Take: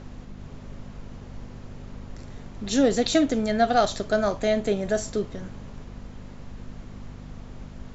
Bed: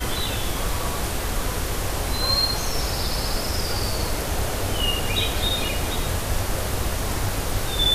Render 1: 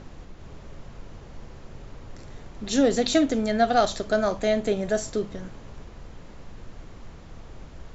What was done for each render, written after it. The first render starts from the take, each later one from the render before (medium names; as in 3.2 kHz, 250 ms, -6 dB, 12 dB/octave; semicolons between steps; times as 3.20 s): de-hum 50 Hz, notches 5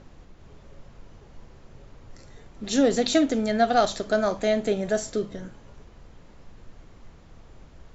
noise print and reduce 6 dB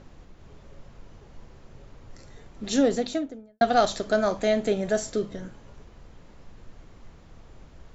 2.64–3.61 s: studio fade out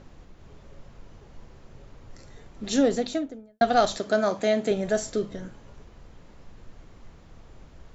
3.97–4.71 s: high-pass 120 Hz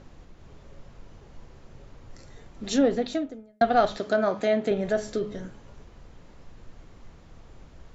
low-pass that closes with the level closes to 2.9 kHz, closed at -19.5 dBFS; de-hum 210.2 Hz, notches 16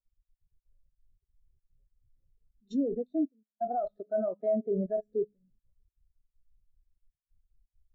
level held to a coarse grid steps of 16 dB; spectral contrast expander 2.5:1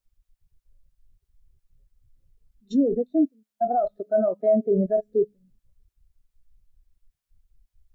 trim +8.5 dB